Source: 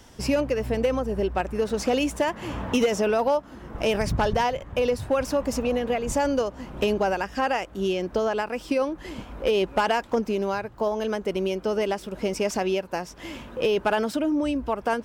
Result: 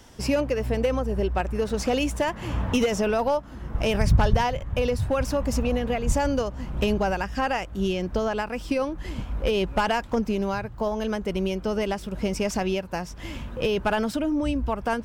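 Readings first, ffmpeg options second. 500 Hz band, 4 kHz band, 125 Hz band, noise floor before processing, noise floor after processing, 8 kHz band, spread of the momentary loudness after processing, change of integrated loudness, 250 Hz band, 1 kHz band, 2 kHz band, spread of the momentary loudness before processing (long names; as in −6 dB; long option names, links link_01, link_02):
−2.0 dB, 0.0 dB, +7.0 dB, −46 dBFS, −40 dBFS, 0.0 dB, 6 LU, −0.5 dB, +1.0 dB, −1.0 dB, 0.0 dB, 6 LU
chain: -af "aeval=exprs='0.188*(cos(1*acos(clip(val(0)/0.188,-1,1)))-cos(1*PI/2))+0.00133*(cos(4*acos(clip(val(0)/0.188,-1,1)))-cos(4*PI/2))':channel_layout=same,asubboost=boost=3.5:cutoff=170"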